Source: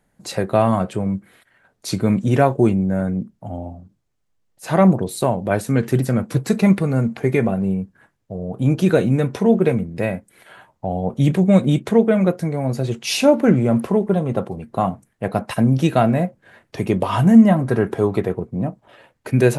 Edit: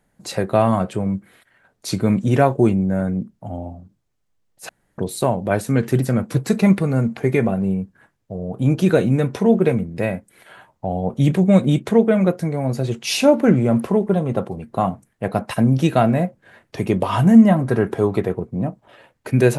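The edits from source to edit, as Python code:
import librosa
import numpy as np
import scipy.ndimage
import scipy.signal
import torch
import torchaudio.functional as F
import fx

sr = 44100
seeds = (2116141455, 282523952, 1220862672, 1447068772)

y = fx.edit(x, sr, fx.room_tone_fill(start_s=4.69, length_s=0.29), tone=tone)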